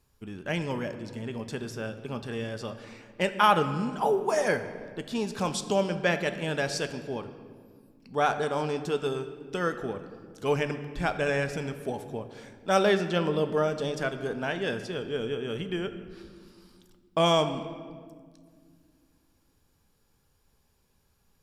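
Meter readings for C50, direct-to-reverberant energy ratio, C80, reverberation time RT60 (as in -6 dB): 11.0 dB, 9.0 dB, 12.0 dB, 1.9 s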